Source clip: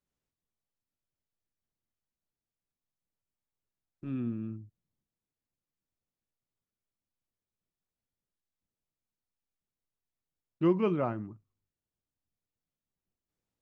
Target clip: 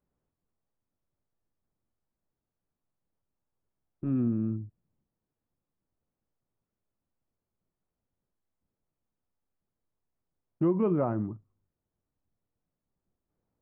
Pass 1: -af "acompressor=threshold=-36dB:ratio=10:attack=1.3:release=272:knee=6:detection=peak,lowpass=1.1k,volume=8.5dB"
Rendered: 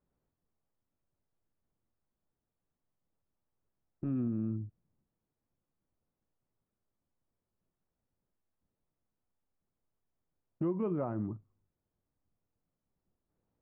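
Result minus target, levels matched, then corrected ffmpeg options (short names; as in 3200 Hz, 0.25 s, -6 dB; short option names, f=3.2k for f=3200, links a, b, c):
compressor: peak gain reduction +7 dB
-af "acompressor=threshold=-28dB:ratio=10:attack=1.3:release=272:knee=6:detection=peak,lowpass=1.1k,volume=8.5dB"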